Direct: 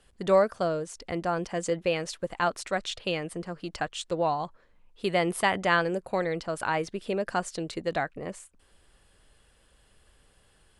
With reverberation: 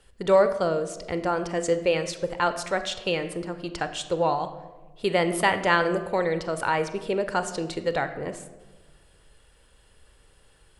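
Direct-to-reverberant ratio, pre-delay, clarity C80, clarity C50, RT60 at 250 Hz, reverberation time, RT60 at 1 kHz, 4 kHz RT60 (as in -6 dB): 10.0 dB, 30 ms, 13.5 dB, 11.5 dB, 1.5 s, 1.3 s, 1.1 s, 0.80 s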